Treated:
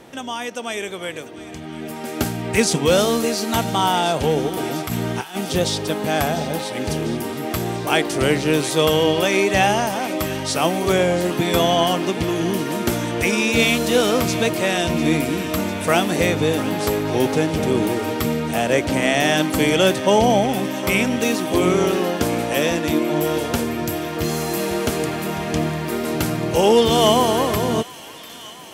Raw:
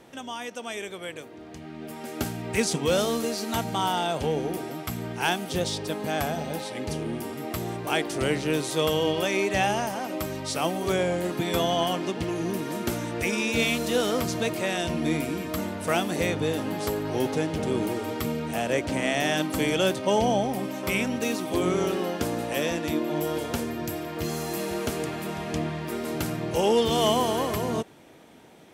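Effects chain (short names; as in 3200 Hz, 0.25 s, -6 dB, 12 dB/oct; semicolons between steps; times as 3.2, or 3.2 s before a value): 4.49–5.41 negative-ratio compressor -32 dBFS, ratio -0.5; thin delay 0.697 s, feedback 76%, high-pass 1400 Hz, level -14.5 dB; gain +7.5 dB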